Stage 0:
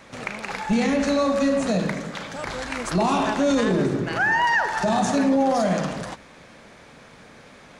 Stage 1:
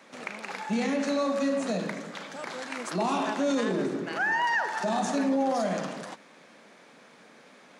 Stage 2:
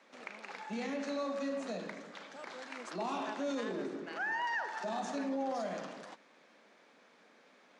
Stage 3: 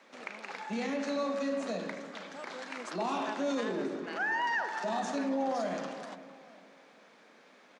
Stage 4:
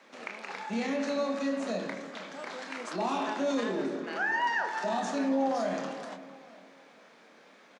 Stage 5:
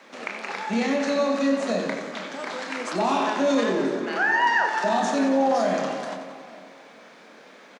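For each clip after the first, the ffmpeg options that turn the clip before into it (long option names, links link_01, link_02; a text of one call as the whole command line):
ffmpeg -i in.wav -af "highpass=frequency=190:width=0.5412,highpass=frequency=190:width=1.3066,volume=-6dB" out.wav
ffmpeg -i in.wav -filter_complex "[0:a]acrossover=split=190 7400:gain=0.158 1 0.224[link_01][link_02][link_03];[link_01][link_02][link_03]amix=inputs=3:normalize=0,volume=-9dB" out.wav
ffmpeg -i in.wav -filter_complex "[0:a]asplit=2[link_01][link_02];[link_02]adelay=452,lowpass=frequency=1800:poles=1,volume=-14dB,asplit=2[link_03][link_04];[link_04]adelay=452,lowpass=frequency=1800:poles=1,volume=0.32,asplit=2[link_05][link_06];[link_06]adelay=452,lowpass=frequency=1800:poles=1,volume=0.32[link_07];[link_01][link_03][link_05][link_07]amix=inputs=4:normalize=0,volume=4dB" out.wav
ffmpeg -i in.wav -filter_complex "[0:a]asplit=2[link_01][link_02];[link_02]adelay=26,volume=-7.5dB[link_03];[link_01][link_03]amix=inputs=2:normalize=0,volume=1.5dB" out.wav
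ffmpeg -i in.wav -af "aecho=1:1:91|182|273|364|455|546|637:0.316|0.183|0.106|0.0617|0.0358|0.0208|0.012,volume=7.5dB" out.wav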